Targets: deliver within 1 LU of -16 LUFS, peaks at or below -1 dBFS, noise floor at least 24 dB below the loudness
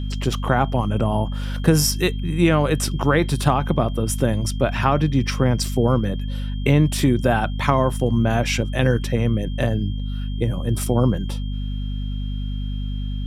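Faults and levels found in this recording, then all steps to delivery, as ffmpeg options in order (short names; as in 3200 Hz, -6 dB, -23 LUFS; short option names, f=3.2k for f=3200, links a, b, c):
hum 50 Hz; harmonics up to 250 Hz; hum level -23 dBFS; steady tone 3200 Hz; tone level -43 dBFS; loudness -21.5 LUFS; peak -2.5 dBFS; loudness target -16.0 LUFS
-> -af "bandreject=f=50:t=h:w=6,bandreject=f=100:t=h:w=6,bandreject=f=150:t=h:w=6,bandreject=f=200:t=h:w=6,bandreject=f=250:t=h:w=6"
-af "bandreject=f=3.2k:w=30"
-af "volume=5.5dB,alimiter=limit=-1dB:level=0:latency=1"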